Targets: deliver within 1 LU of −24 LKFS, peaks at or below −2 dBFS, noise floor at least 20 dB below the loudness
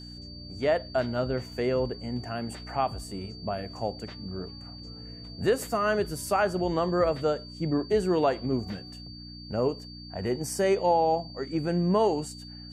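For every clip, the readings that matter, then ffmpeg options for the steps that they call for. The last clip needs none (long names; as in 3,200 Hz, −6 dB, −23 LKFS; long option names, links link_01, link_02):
mains hum 60 Hz; hum harmonics up to 300 Hz; level of the hum −43 dBFS; interfering tone 4,600 Hz; level of the tone −45 dBFS; integrated loudness −28.5 LKFS; sample peak −12.5 dBFS; target loudness −24.0 LKFS
→ -af "bandreject=frequency=60:width_type=h:width=4,bandreject=frequency=120:width_type=h:width=4,bandreject=frequency=180:width_type=h:width=4,bandreject=frequency=240:width_type=h:width=4,bandreject=frequency=300:width_type=h:width=4"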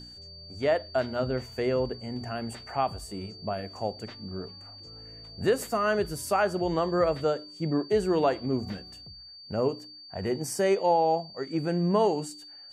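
mains hum none found; interfering tone 4,600 Hz; level of the tone −45 dBFS
→ -af "bandreject=frequency=4600:width=30"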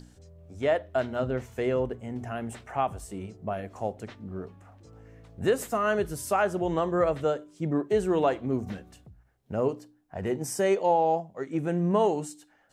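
interfering tone none found; integrated loudness −28.5 LKFS; sample peak −12.5 dBFS; target loudness −24.0 LKFS
→ -af "volume=4.5dB"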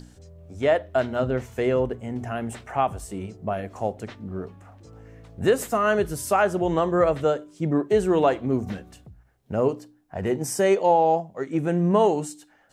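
integrated loudness −24.0 LKFS; sample peak −8.0 dBFS; background noise floor −58 dBFS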